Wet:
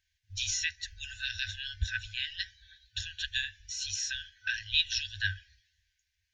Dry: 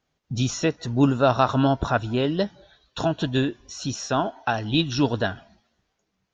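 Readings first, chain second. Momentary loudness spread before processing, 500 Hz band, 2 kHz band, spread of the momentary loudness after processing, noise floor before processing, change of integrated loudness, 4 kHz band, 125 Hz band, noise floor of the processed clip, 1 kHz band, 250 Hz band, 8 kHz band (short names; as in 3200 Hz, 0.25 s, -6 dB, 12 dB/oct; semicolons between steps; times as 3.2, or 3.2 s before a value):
10 LU, under -40 dB, -1.5 dB, 12 LU, -77 dBFS, -9.5 dB, 0.0 dB, -18.0 dB, -81 dBFS, under -40 dB, under -40 dB, n/a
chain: FFT band-reject 100–1500 Hz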